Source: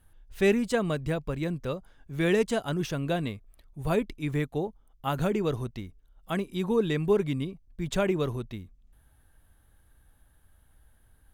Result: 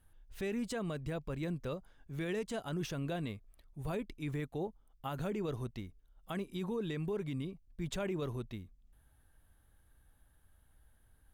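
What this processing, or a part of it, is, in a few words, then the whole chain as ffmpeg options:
stacked limiters: -af "alimiter=limit=-19dB:level=0:latency=1:release=222,alimiter=limit=-23.5dB:level=0:latency=1:release=15,volume=-5.5dB"

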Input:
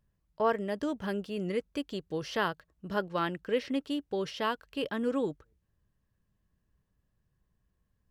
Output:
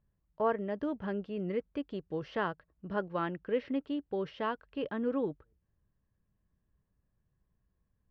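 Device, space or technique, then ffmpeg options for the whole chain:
phone in a pocket: -af "lowpass=3100,highshelf=frequency=2500:gain=-9,volume=-1.5dB"

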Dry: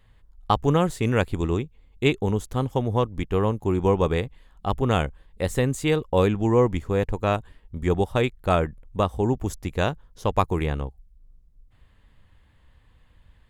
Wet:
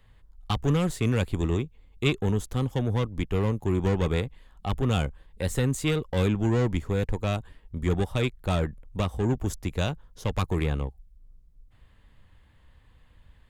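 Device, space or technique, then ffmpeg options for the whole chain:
one-band saturation: -filter_complex "[0:a]acrossover=split=250|2200[link_01][link_02][link_03];[link_02]asoftclip=type=tanh:threshold=-27.5dB[link_04];[link_01][link_04][link_03]amix=inputs=3:normalize=0"

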